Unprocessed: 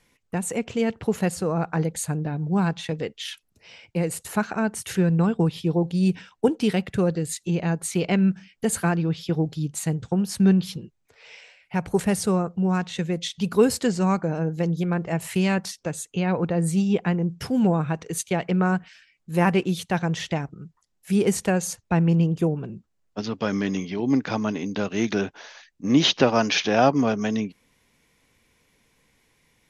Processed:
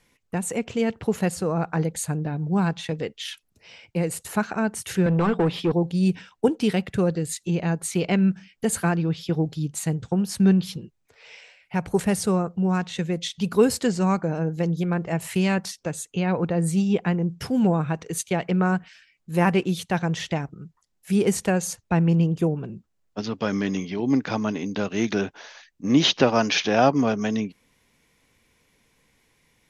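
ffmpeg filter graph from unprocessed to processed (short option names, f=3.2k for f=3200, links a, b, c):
-filter_complex "[0:a]asettb=1/sr,asplit=3[a][b][c];[a]atrim=end=5.064[d];[b]atrim=start=5.06:end=5.72,asetpts=PTS-STARTPTS,afade=t=in:d=0.004:c=qsin,afade=t=out:st=0.656:d=0.004:c=qsin,highpass=f=130:p=1,bandreject=f=60:t=h:w=6,bandreject=f=120:t=h:w=6,bandreject=f=180:t=h:w=6,asplit=2[e][f];[f]highpass=f=720:p=1,volume=22dB,asoftclip=type=tanh:threshold=-12dB[g];[e][g]amix=inputs=2:normalize=0,lowpass=f=1.2k:p=1,volume=-6dB[h];[c]atrim=start=5.716[i];[d][h]acrossfade=d=0.004:c1=hsin:c2=qsin[j];[j][i]acrossfade=d=0.004:c1=qsin:c2=hsin"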